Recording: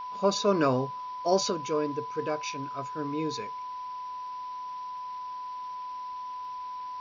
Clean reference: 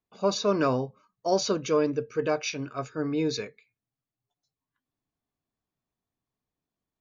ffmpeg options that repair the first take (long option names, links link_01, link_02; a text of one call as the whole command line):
ffmpeg -i in.wav -af "adeclick=threshold=4,bandreject=frequency=1000:width=30,afwtdn=0.0022,asetnsamples=nb_out_samples=441:pad=0,asendcmd='1.5 volume volume 5dB',volume=0dB" out.wav